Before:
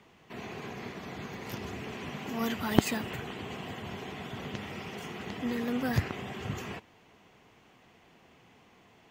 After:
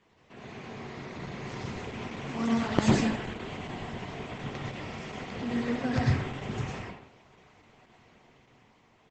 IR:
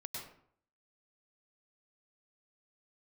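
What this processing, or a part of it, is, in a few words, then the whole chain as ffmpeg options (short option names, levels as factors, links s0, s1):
speakerphone in a meeting room: -filter_complex "[1:a]atrim=start_sample=2205[s0];[0:a][s0]afir=irnorm=-1:irlink=0,asplit=2[s1][s2];[s2]adelay=130,highpass=300,lowpass=3400,asoftclip=type=hard:threshold=0.0891,volume=0.251[s3];[s1][s3]amix=inputs=2:normalize=0,dynaudnorm=f=110:g=17:m=1.58" -ar 48000 -c:a libopus -b:a 12k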